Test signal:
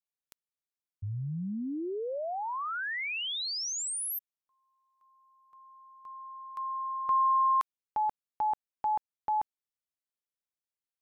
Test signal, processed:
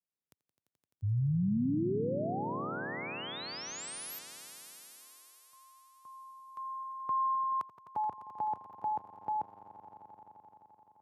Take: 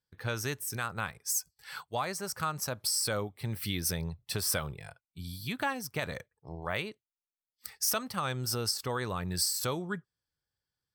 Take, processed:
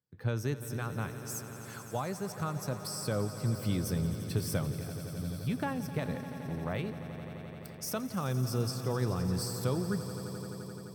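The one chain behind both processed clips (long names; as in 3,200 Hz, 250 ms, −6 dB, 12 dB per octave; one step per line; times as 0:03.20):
high-pass filter 94 Hz 24 dB per octave
tilt shelving filter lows +8 dB, about 650 Hz
on a send: echo that builds up and dies away 86 ms, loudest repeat 5, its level −15 dB
on the sum: level −2 dB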